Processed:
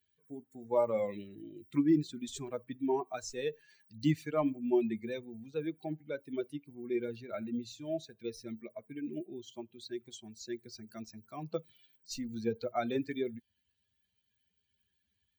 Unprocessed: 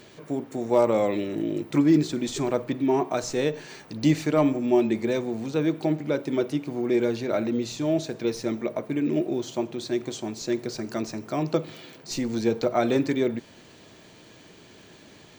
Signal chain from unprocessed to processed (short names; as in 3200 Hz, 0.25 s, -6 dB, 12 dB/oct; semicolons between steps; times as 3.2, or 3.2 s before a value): per-bin expansion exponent 2; gain -5.5 dB